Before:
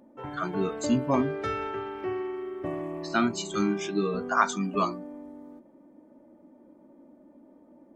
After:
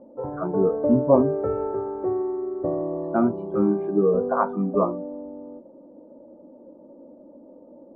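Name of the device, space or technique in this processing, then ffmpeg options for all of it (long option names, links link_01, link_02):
under water: -af "lowpass=frequency=1000:width=0.5412,lowpass=frequency=1000:width=1.3066,equalizer=frequency=510:width_type=o:width=0.41:gain=12,volume=4.5dB"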